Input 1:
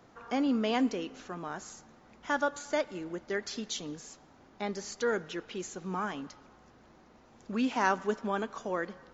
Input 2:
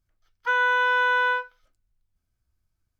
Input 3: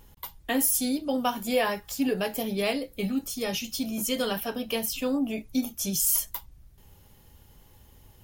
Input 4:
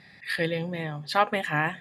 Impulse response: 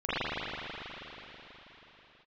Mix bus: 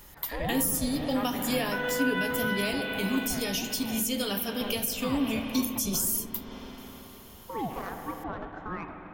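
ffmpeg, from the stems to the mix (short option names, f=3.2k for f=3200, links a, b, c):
-filter_complex "[0:a]adynamicsmooth=sensitivity=2:basefreq=1.7k,alimiter=level_in=1dB:limit=-24dB:level=0:latency=1:release=280,volume=-1dB,aeval=exprs='val(0)*sin(2*PI*460*n/s+460*0.6/1.6*sin(2*PI*1.6*n/s))':c=same,volume=1dB,asplit=2[a][b];[b]volume=-18.5dB[c];[1:a]adelay=1250,volume=-5.5dB,asplit=2[d][e];[e]volume=-7.5dB[f];[2:a]highshelf=f=2.2k:g=11,volume=-2dB,asplit=2[g][h];[h]volume=-19.5dB[i];[3:a]volume=-12dB,asplit=2[j][k];[k]volume=-14.5dB[l];[4:a]atrim=start_sample=2205[m];[c][f][i][l]amix=inputs=4:normalize=0[n];[n][m]afir=irnorm=-1:irlink=0[o];[a][d][g][j][o]amix=inputs=5:normalize=0,acrossover=split=380[p][q];[q]acompressor=threshold=-31dB:ratio=3[r];[p][r]amix=inputs=2:normalize=0"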